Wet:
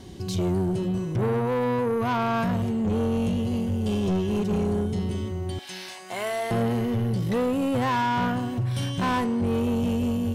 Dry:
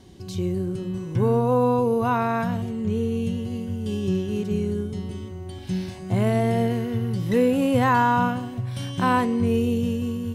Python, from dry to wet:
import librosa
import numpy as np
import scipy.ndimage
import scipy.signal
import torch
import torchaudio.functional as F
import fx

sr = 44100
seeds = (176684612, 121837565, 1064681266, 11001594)

y = fx.highpass(x, sr, hz=860.0, slope=12, at=(5.59, 6.51))
y = fx.rider(y, sr, range_db=3, speed_s=0.5)
y = 10.0 ** (-23.5 / 20.0) * np.tanh(y / 10.0 ** (-23.5 / 20.0))
y = y * librosa.db_to_amplitude(3.0)